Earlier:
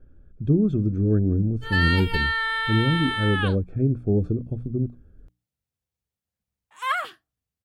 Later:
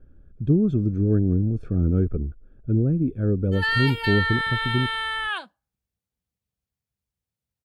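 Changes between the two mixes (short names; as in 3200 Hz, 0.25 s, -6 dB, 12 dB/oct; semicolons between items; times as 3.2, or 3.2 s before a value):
background: entry +1.90 s; master: remove notches 60/120/180/240/300 Hz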